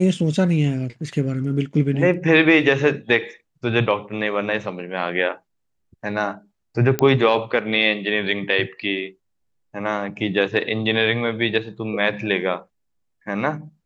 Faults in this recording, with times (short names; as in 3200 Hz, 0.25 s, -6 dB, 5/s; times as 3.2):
6.99 pop -5 dBFS